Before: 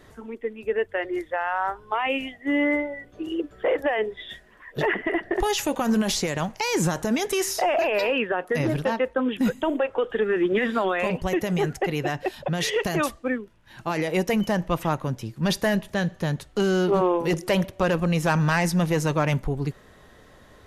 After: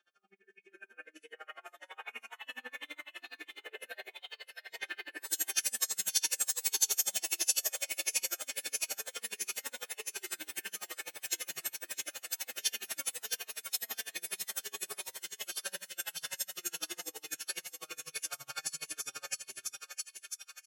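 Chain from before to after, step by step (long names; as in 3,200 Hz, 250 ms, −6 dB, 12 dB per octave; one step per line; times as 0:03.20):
every partial snapped to a pitch grid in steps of 2 semitones
high-pass filter 120 Hz 12 dB per octave
low-pass that shuts in the quiet parts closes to 2,600 Hz, open at −21.5 dBFS
dynamic equaliser 380 Hz, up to +4 dB, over −38 dBFS, Q 4.8
flanger 1.4 Hz, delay 4.2 ms, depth 5 ms, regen −14%
first difference
notch comb filter 1,100 Hz
pitch shifter −2 semitones
delay with pitch and tempo change per echo 675 ms, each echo +3 semitones, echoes 3
on a send: feedback echo with a high-pass in the loop 653 ms, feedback 69%, high-pass 1,100 Hz, level −3.5 dB
on the sum: four-comb reverb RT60 0.64 s, combs from 30 ms, DRR 7.5 dB
tremolo with a sine in dB 12 Hz, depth 32 dB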